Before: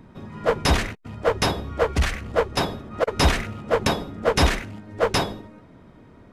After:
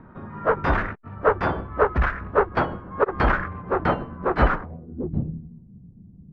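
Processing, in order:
pitch glide at a constant tempo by −5.5 semitones starting unshifted
low-pass filter sweep 1,400 Hz → 180 Hz, 0:04.49–0:05.10

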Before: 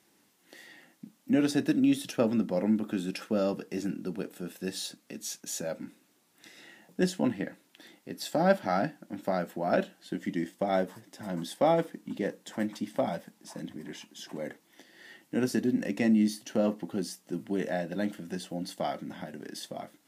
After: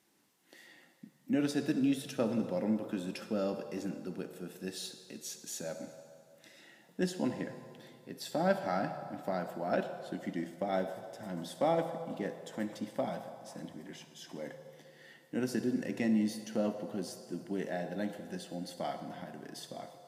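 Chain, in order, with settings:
on a send: octave-band graphic EQ 125/250/500/1,000/4,000/8,000 Hz +10/−7/+9/+10/+7/+5 dB + convolution reverb RT60 2.2 s, pre-delay 51 ms, DRR 7.5 dB
on the sum: level −5.5 dB

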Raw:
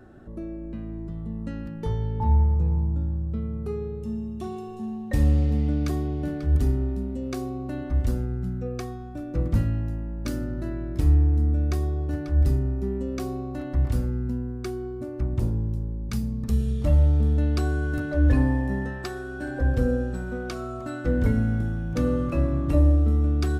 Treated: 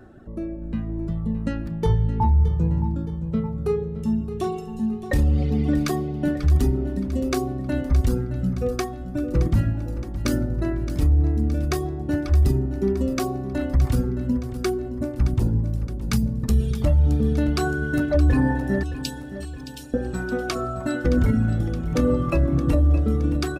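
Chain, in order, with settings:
reverb reduction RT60 1.5 s
0:18.83–0:19.94: Butterworth high-pass 2,600 Hz 72 dB per octave
brickwall limiter −21.5 dBFS, peak gain reduction 11 dB
automatic gain control gain up to 7.5 dB
repeating echo 619 ms, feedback 53%, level −13 dB
level +2.5 dB

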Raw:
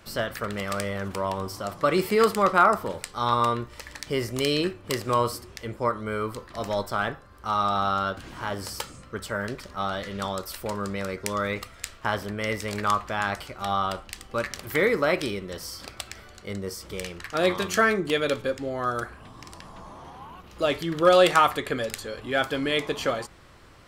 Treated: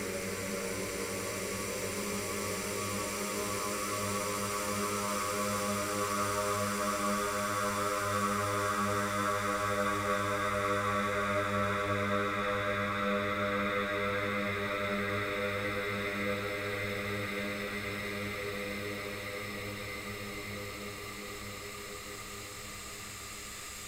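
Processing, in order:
harmonic and percussive parts rebalanced harmonic −3 dB
extreme stretch with random phases 41×, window 0.50 s, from 0:11.16
level −2.5 dB

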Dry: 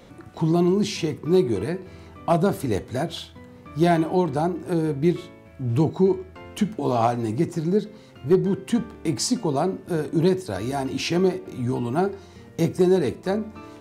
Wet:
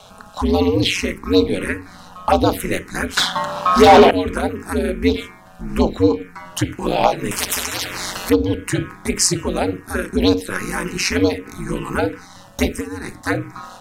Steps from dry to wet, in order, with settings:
high-shelf EQ 4,100 Hz −8 dB
notch filter 4,600 Hz, Q 25
0:12.69–0:13.15: downward compressor 10 to 1, threshold −24 dBFS, peak gain reduction 11 dB
mains-hum notches 60/120/180/240/300/360 Hz
ring modulation 92 Hz
phaser swept by the level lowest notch 330 Hz, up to 1,900 Hz, full sweep at −17.5 dBFS
tilt shelving filter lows −9 dB, about 910 Hz
0:03.17–0:04.11: mid-hump overdrive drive 30 dB, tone 1,900 Hz, clips at −12 dBFS
boost into a limiter +15.5 dB
0:07.31–0:08.30: every bin compressed towards the loudest bin 10 to 1
level −1 dB

